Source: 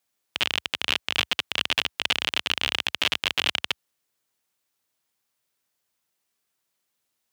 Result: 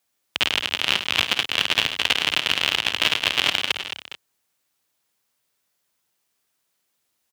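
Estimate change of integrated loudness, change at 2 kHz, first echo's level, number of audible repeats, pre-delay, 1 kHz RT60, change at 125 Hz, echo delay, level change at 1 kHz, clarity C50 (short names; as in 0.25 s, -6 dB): +4.5 dB, +4.5 dB, -12.0 dB, 4, none, none, +4.5 dB, 53 ms, +4.5 dB, none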